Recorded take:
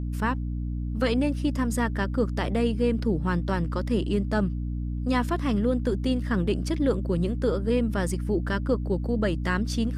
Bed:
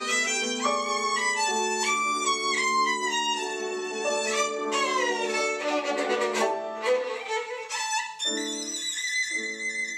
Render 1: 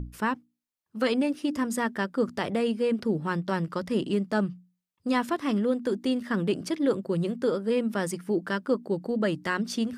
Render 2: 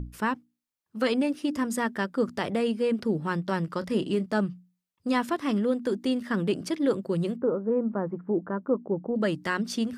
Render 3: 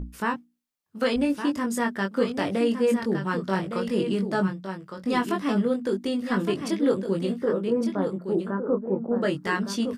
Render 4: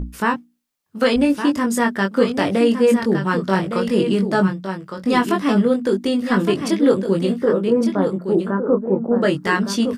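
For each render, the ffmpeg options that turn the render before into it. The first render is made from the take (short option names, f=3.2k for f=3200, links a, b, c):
-af "bandreject=f=60:t=h:w=6,bandreject=f=120:t=h:w=6,bandreject=f=180:t=h:w=6,bandreject=f=240:t=h:w=6,bandreject=f=300:t=h:w=6"
-filter_complex "[0:a]asettb=1/sr,asplit=3[a][b][c];[a]atrim=end=3.794[d];[b]atrim=start=3.79:end=4.26,asetpts=PTS-STARTPTS,afade=t=in:d=0.004:c=qsin,afade=t=out:st=0.466:d=0.004:c=qsin,asplit=2[e][f];[f]adelay=27,volume=-12.5dB[g];[e][g]amix=inputs=2:normalize=0,atrim=end_sample=20727[h];[c]atrim=start=4.256[i];[d][h]acrossfade=d=0.004:c1=hsin:c2=qsin[j];[j][i]acrossfade=d=0.004:c1=qsin:c2=hsin,asettb=1/sr,asplit=3[k][l][m];[k]atrim=end=7.374[n];[l]atrim=start=7.37:end=9.16,asetpts=PTS-STARTPTS,afade=t=in:d=0.004:c=qsin,afade=t=out:st=1.786:d=0.004:c=qsin,lowpass=f=1.2k:w=0.5412,lowpass=f=1.2k:w=1.3066[o];[m]atrim=start=9.156[p];[n][o]acrossfade=d=0.004:c1=hsin:c2=qsin[q];[q][p]acrossfade=d=0.004:c1=qsin:c2=hsin"
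-filter_complex "[0:a]asplit=2[a][b];[b]adelay=21,volume=-4dB[c];[a][c]amix=inputs=2:normalize=0,aecho=1:1:1161:0.398"
-af "volume=7.5dB"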